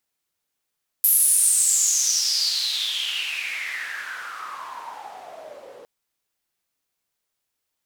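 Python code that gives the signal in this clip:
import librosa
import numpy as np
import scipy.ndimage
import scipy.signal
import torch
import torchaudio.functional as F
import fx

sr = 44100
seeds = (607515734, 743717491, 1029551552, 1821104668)

y = fx.riser_noise(sr, seeds[0], length_s=4.81, colour='white', kind='bandpass', start_hz=12000.0, end_hz=480.0, q=7.8, swell_db=-15, law='exponential')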